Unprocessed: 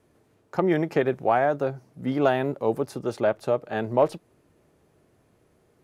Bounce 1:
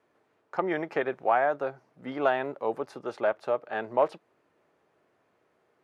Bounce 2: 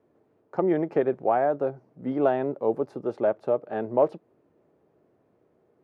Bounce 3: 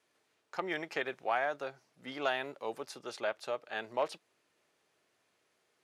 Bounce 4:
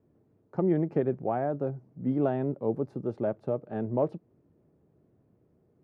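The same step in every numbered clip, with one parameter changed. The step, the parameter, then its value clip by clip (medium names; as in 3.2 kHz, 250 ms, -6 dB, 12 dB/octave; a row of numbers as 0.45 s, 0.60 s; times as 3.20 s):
band-pass filter, frequency: 1.3 kHz, 460 Hz, 3.8 kHz, 170 Hz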